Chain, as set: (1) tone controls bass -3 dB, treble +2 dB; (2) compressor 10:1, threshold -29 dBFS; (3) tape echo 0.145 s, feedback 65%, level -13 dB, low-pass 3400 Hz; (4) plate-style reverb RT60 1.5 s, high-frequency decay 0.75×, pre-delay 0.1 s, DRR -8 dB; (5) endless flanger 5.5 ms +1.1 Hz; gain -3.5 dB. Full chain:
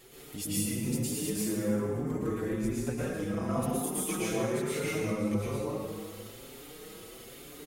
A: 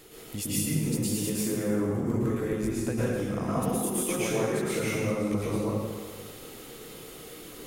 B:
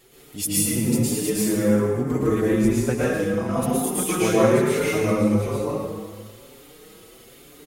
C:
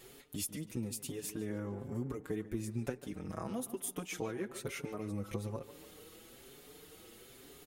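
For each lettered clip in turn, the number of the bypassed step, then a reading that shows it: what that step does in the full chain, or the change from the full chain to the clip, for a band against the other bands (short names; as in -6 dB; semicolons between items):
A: 5, loudness change +3.0 LU; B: 2, mean gain reduction 6.0 dB; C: 4, crest factor change +5.0 dB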